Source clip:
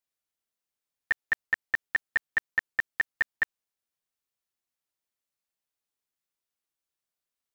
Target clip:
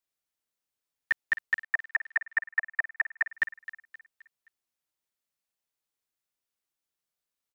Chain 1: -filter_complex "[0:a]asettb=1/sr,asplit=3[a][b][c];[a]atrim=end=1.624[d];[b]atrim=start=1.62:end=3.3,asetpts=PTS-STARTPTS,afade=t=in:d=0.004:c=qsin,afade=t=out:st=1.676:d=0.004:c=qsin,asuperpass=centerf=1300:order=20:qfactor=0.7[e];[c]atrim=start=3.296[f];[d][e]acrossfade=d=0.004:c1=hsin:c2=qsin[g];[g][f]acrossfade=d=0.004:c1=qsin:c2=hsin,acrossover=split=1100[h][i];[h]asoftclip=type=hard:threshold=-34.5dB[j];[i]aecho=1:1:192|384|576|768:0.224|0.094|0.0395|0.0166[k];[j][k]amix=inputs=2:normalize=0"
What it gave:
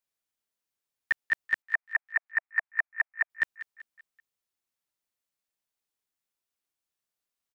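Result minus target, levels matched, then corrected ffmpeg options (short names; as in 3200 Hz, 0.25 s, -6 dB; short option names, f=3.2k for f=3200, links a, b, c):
echo 70 ms early
-filter_complex "[0:a]asettb=1/sr,asplit=3[a][b][c];[a]atrim=end=1.624[d];[b]atrim=start=1.62:end=3.3,asetpts=PTS-STARTPTS,afade=t=in:d=0.004:c=qsin,afade=t=out:st=1.676:d=0.004:c=qsin,asuperpass=centerf=1300:order=20:qfactor=0.7[e];[c]atrim=start=3.296[f];[d][e]acrossfade=d=0.004:c1=hsin:c2=qsin[g];[g][f]acrossfade=d=0.004:c1=qsin:c2=hsin,acrossover=split=1100[h][i];[h]asoftclip=type=hard:threshold=-34.5dB[j];[i]aecho=1:1:262|524|786|1048:0.224|0.094|0.0395|0.0166[k];[j][k]amix=inputs=2:normalize=0"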